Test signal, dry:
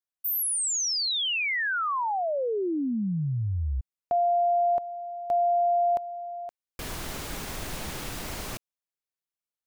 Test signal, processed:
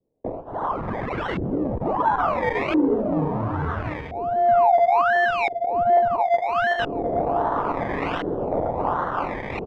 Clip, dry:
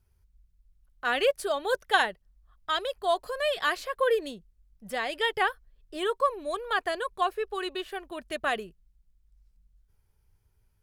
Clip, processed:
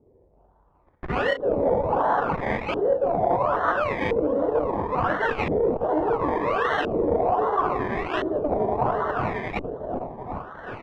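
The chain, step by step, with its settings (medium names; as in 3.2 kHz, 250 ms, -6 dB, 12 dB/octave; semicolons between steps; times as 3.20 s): chunks repeated in reverse 228 ms, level -5 dB; doubling 22 ms -13 dB; overdrive pedal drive 33 dB, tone 1.2 kHz, clips at -7.5 dBFS; high-pass 160 Hz 6 dB/octave; thinning echo 372 ms, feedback 71%, high-pass 630 Hz, level -3 dB; reverse; compression 6:1, threshold -25 dBFS; reverse; steep low-pass 9.6 kHz 72 dB/octave; FDN reverb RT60 0.52 s, low-frequency decay 1.3×, high-frequency decay 0.4×, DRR 4.5 dB; decimation with a swept rate 25×, swing 60% 1.3 Hz; LFO low-pass saw up 0.73 Hz 390–2500 Hz; transformer saturation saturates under 270 Hz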